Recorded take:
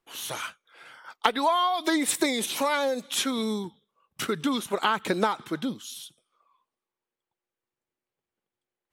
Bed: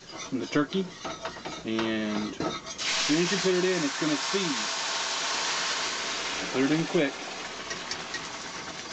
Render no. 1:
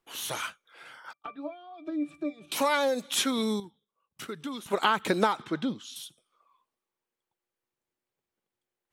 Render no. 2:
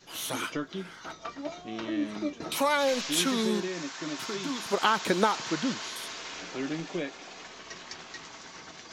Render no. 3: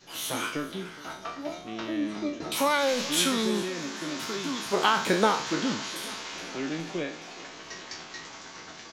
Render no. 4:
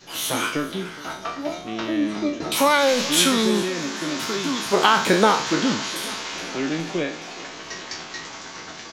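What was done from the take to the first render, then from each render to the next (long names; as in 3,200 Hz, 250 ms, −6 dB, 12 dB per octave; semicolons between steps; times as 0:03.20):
0:01.13–0:02.52: resonances in every octave D, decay 0.14 s; 0:03.60–0:04.66: clip gain −10 dB; 0:05.42–0:05.96: high-frequency loss of the air 79 metres
mix in bed −8.5 dB
peak hold with a decay on every bin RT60 0.46 s; repeating echo 418 ms, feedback 54%, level −19 dB
level +7 dB; brickwall limiter −3 dBFS, peak gain reduction 2 dB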